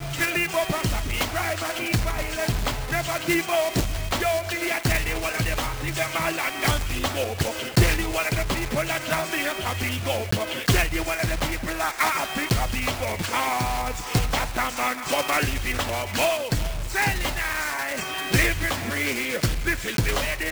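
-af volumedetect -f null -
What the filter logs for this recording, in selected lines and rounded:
mean_volume: -24.9 dB
max_volume: -8.6 dB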